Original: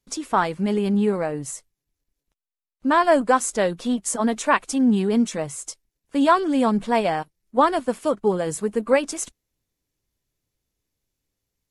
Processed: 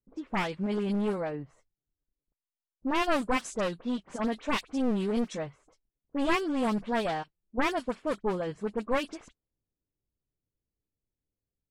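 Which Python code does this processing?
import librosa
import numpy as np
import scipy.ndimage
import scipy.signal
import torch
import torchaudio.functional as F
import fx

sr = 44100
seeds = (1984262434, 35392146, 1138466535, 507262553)

y = np.minimum(x, 2.0 * 10.0 ** (-19.5 / 20.0) - x)
y = fx.dispersion(y, sr, late='highs', ms=46.0, hz=2400.0)
y = fx.env_lowpass(y, sr, base_hz=580.0, full_db=-16.5)
y = y * 10.0 ** (-7.5 / 20.0)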